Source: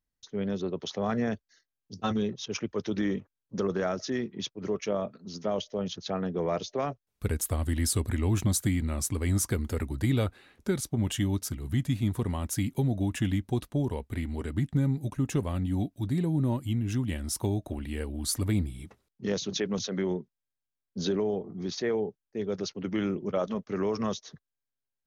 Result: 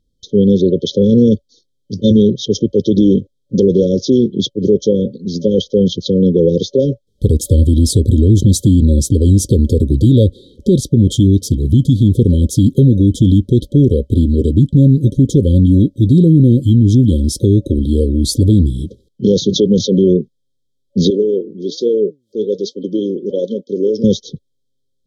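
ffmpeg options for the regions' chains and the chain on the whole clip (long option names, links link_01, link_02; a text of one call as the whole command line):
ffmpeg -i in.wav -filter_complex "[0:a]asettb=1/sr,asplit=3[link_01][link_02][link_03];[link_01]atrim=end=21.104[link_04];[link_02]atrim=start=21.1:end=24.04,asetpts=PTS-STARTPTS,afade=type=in:duration=0.004:curve=qsin,afade=type=out:start_time=2.936:duration=0.004:curve=qsin,highpass=330,flanger=delay=3:depth=7.4:regen=79:speed=1.2:shape=triangular,acompressor=mode=upward:threshold=-55dB:ratio=2.5:attack=3.2:release=140:knee=2.83:detection=peak[link_05];[link_03]atrim=start=24.036[link_06];[link_04][link_05]acrossfade=duration=0.004:curve1=hsin:curve2=qsin[link_07];[link_07][link_06]acrossfade=duration=0.004:curve1=qsin:curve2=hsin,afftfilt=real='re*(1-between(b*sr/4096,570,3100))':imag='im*(1-between(b*sr/4096,570,3100))':win_size=4096:overlap=0.75,aemphasis=mode=reproduction:type=75fm,alimiter=level_in=21.5dB:limit=-1dB:release=50:level=0:latency=1,volume=-1dB" out.wav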